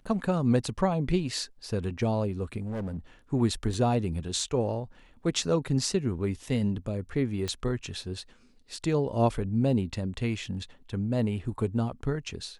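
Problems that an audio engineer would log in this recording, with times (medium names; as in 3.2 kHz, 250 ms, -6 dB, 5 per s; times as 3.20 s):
2.60–2.99 s: clipped -30 dBFS
3.74 s: dropout 2.1 ms
7.48 s: pop -18 dBFS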